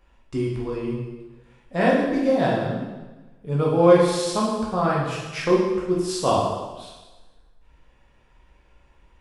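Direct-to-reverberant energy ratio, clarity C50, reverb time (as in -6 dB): -5.0 dB, 1.0 dB, 1.2 s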